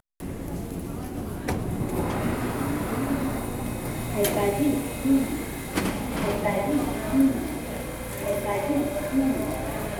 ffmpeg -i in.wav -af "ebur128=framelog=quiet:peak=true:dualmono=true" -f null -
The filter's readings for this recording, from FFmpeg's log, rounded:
Integrated loudness:
  I:         -24.0 LUFS
  Threshold: -34.1 LUFS
Loudness range:
  LRA:         3.6 LU
  Threshold: -43.7 LUFS
  LRA low:   -26.0 LUFS
  LRA high:  -22.4 LUFS
True peak:
  Peak:       -9.7 dBFS